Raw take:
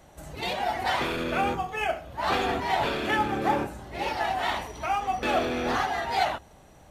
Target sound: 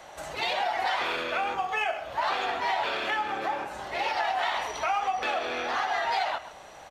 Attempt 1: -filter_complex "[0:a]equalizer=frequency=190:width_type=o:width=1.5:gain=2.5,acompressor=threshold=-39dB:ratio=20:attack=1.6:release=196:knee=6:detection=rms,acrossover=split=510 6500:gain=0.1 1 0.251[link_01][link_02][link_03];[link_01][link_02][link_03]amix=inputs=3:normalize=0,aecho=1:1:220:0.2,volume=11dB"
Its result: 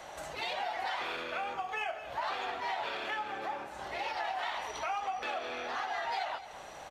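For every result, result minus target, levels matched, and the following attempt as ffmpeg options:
echo 89 ms late; downward compressor: peak gain reduction +7.5 dB
-filter_complex "[0:a]equalizer=frequency=190:width_type=o:width=1.5:gain=2.5,acompressor=threshold=-39dB:ratio=20:attack=1.6:release=196:knee=6:detection=rms,acrossover=split=510 6500:gain=0.1 1 0.251[link_01][link_02][link_03];[link_01][link_02][link_03]amix=inputs=3:normalize=0,aecho=1:1:131:0.2,volume=11dB"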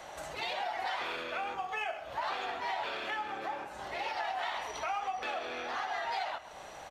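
downward compressor: peak gain reduction +7.5 dB
-filter_complex "[0:a]equalizer=frequency=190:width_type=o:width=1.5:gain=2.5,acompressor=threshold=-31dB:ratio=20:attack=1.6:release=196:knee=6:detection=rms,acrossover=split=510 6500:gain=0.1 1 0.251[link_01][link_02][link_03];[link_01][link_02][link_03]amix=inputs=3:normalize=0,aecho=1:1:131:0.2,volume=11dB"

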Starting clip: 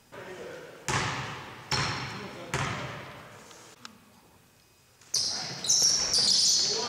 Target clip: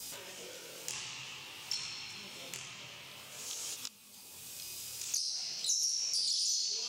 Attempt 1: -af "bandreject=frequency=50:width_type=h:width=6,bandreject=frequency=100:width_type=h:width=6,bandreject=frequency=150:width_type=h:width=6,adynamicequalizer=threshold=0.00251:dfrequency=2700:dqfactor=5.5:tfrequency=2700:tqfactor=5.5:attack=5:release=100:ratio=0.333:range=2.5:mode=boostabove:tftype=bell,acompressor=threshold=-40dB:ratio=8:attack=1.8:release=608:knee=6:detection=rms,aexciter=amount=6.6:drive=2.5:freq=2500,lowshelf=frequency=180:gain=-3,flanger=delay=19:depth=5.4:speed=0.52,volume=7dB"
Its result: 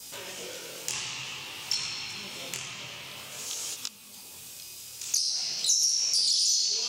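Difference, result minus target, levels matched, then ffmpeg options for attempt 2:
downward compressor: peak gain reduction −8 dB
-af "bandreject=frequency=50:width_type=h:width=6,bandreject=frequency=100:width_type=h:width=6,bandreject=frequency=150:width_type=h:width=6,adynamicequalizer=threshold=0.00251:dfrequency=2700:dqfactor=5.5:tfrequency=2700:tqfactor=5.5:attack=5:release=100:ratio=0.333:range=2.5:mode=boostabove:tftype=bell,acompressor=threshold=-49dB:ratio=8:attack=1.8:release=608:knee=6:detection=rms,aexciter=amount=6.6:drive=2.5:freq=2500,lowshelf=frequency=180:gain=-3,flanger=delay=19:depth=5.4:speed=0.52,volume=7dB"

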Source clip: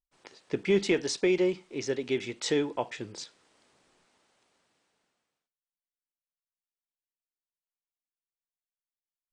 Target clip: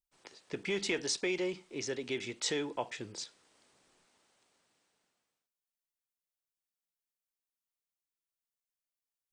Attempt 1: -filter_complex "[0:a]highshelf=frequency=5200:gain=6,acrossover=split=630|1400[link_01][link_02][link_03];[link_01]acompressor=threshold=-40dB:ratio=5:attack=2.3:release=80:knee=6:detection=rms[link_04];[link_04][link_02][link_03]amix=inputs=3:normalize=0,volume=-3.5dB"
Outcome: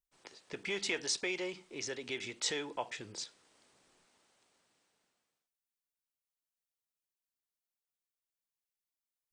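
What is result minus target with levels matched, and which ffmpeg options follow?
downward compressor: peak gain reduction +8 dB
-filter_complex "[0:a]highshelf=frequency=5200:gain=6,acrossover=split=630|1400[link_01][link_02][link_03];[link_01]acompressor=threshold=-30dB:ratio=5:attack=2.3:release=80:knee=6:detection=rms[link_04];[link_04][link_02][link_03]amix=inputs=3:normalize=0,volume=-3.5dB"

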